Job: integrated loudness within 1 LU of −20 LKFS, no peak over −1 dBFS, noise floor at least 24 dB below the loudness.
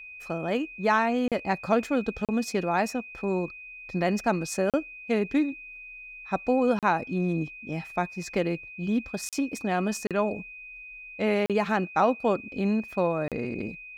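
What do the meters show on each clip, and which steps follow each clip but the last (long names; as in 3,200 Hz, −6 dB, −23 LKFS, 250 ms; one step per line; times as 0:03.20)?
number of dropouts 8; longest dropout 37 ms; interfering tone 2,500 Hz; level of the tone −41 dBFS; integrated loudness −28.0 LKFS; sample peak −10.0 dBFS; target loudness −20.0 LKFS
→ repair the gap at 0:01.28/0:02.25/0:04.70/0:06.79/0:09.29/0:10.07/0:11.46/0:13.28, 37 ms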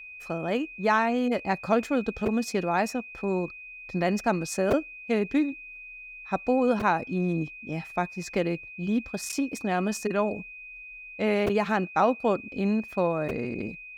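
number of dropouts 0; interfering tone 2,500 Hz; level of the tone −41 dBFS
→ notch filter 2,500 Hz, Q 30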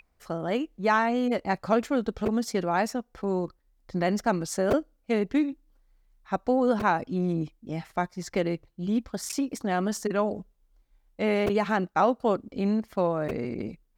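interfering tone none found; integrated loudness −28.0 LKFS; sample peak −10.0 dBFS; target loudness −20.0 LKFS
→ level +8 dB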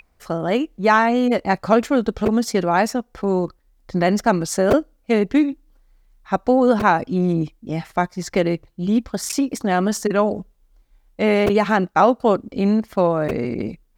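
integrated loudness −20.0 LKFS; sample peak −2.0 dBFS; background noise floor −61 dBFS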